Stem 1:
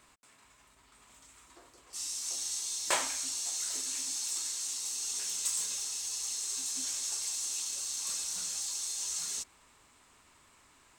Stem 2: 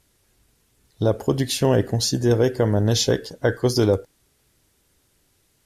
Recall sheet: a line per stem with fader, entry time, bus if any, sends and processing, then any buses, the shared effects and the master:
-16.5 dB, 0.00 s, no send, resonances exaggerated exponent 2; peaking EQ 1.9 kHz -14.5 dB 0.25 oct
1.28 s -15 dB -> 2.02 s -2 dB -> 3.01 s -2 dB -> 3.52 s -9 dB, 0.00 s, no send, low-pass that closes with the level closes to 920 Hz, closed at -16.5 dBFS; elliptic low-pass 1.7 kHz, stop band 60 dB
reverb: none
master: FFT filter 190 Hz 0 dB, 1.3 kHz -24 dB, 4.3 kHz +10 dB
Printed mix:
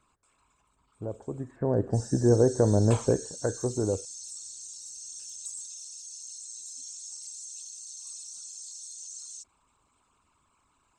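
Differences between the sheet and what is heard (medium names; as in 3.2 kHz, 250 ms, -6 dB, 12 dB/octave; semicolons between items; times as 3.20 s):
stem 1 -16.5 dB -> -6.5 dB; master: missing FFT filter 190 Hz 0 dB, 1.3 kHz -24 dB, 4.3 kHz +10 dB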